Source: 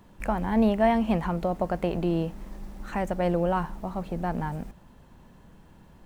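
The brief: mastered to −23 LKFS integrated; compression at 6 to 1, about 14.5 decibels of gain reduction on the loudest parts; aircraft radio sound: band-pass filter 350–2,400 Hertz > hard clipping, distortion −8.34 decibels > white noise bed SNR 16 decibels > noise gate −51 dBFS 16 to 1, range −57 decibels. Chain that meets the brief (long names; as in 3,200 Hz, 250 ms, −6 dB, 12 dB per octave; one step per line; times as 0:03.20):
downward compressor 6 to 1, threshold −33 dBFS
band-pass filter 350–2,400 Hz
hard clipping −38 dBFS
white noise bed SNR 16 dB
noise gate −51 dBFS 16 to 1, range −57 dB
level +21 dB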